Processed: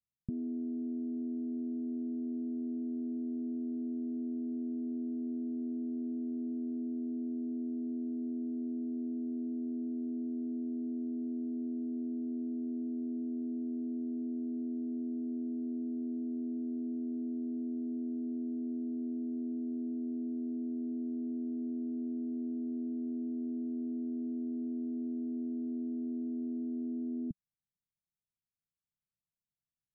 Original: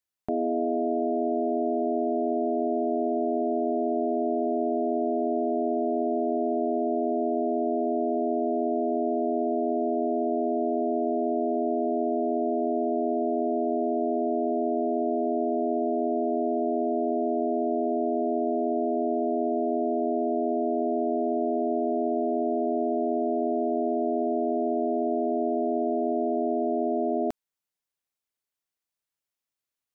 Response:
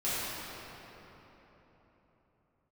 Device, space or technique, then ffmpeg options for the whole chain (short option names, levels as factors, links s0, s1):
the neighbour's flat through the wall: -af "lowpass=f=200:w=0.5412,lowpass=f=200:w=1.3066,equalizer=f=170:t=o:w=0.95:g=5,volume=1.26"